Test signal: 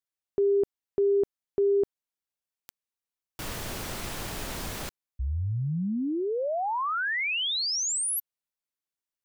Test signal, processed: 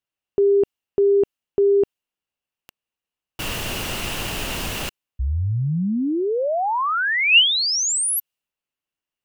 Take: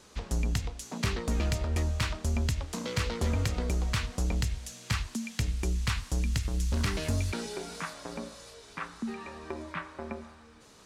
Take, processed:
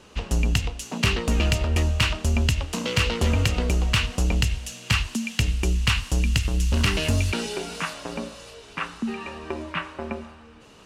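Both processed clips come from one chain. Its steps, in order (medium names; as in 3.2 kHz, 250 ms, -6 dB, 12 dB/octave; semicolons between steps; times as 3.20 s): peaking EQ 2.8 kHz +12 dB 0.26 oct; tape noise reduction on one side only decoder only; trim +7 dB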